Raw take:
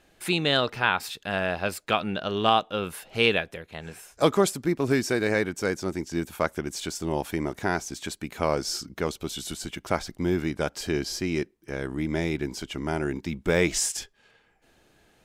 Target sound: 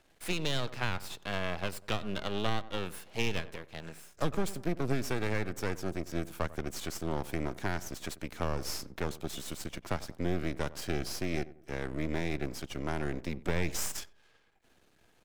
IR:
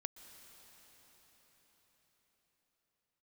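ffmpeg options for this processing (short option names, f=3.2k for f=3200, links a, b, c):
-filter_complex "[0:a]aeval=exprs='max(val(0),0)':c=same,asplit=2[a][b];[b]adelay=93,lowpass=f=1.2k:p=1,volume=-17.5dB,asplit=2[c][d];[d]adelay=93,lowpass=f=1.2k:p=1,volume=0.38,asplit=2[e][f];[f]adelay=93,lowpass=f=1.2k:p=1,volume=0.38[g];[a][c][e][g]amix=inputs=4:normalize=0,acrossover=split=190[h][i];[i]acompressor=threshold=-28dB:ratio=6[j];[h][j]amix=inputs=2:normalize=0,volume=-2dB"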